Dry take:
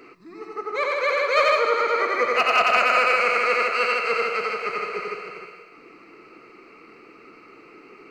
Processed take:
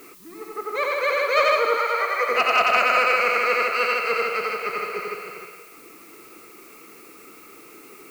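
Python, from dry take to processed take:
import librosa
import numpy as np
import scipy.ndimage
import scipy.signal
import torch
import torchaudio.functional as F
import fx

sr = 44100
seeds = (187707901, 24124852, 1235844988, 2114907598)

y = fx.steep_highpass(x, sr, hz=490.0, slope=36, at=(1.77, 2.29))
y = fx.dmg_noise_colour(y, sr, seeds[0], colour='blue', level_db=-50.0)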